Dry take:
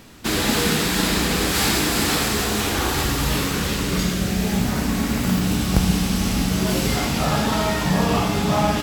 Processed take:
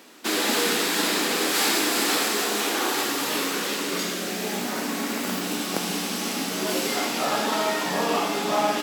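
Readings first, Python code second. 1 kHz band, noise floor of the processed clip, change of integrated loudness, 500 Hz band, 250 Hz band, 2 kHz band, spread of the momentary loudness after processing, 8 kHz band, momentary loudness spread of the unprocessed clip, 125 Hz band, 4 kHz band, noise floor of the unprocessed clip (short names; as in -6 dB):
-1.5 dB, -30 dBFS, -3.5 dB, -1.5 dB, -7.5 dB, -1.5 dB, 6 LU, -1.5 dB, 3 LU, -19.0 dB, -1.5 dB, -24 dBFS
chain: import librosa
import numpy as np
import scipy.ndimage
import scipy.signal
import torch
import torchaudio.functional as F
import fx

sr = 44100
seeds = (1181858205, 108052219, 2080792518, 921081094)

y = scipy.signal.sosfilt(scipy.signal.butter(4, 270.0, 'highpass', fs=sr, output='sos'), x)
y = F.gain(torch.from_numpy(y), -1.5).numpy()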